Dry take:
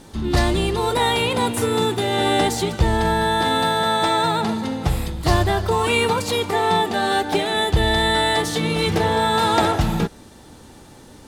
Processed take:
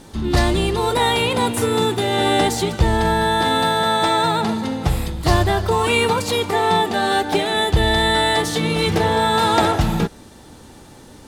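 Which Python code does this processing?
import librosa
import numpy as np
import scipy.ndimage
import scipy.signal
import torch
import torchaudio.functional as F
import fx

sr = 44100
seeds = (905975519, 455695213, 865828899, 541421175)

y = x * 10.0 ** (1.5 / 20.0)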